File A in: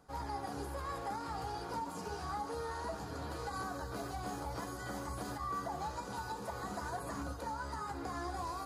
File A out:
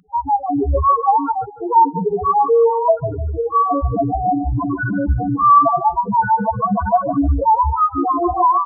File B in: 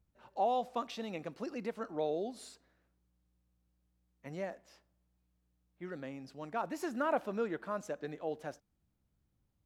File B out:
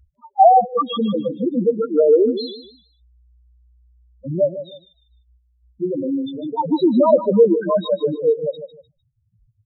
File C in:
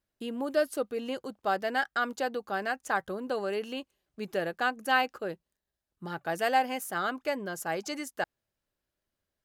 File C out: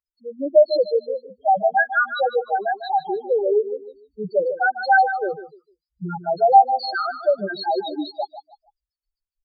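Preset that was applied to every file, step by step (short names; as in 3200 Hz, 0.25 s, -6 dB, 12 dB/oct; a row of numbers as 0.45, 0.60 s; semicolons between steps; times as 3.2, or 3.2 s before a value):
nonlinear frequency compression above 3200 Hz 4:1; loudest bins only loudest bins 2; on a send: feedback echo 0.151 s, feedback 30%, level -10.5 dB; on the sum: spectral noise reduction 27 dB; normalise peaks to -3 dBFS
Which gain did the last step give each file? +30.5, +25.0, +15.5 dB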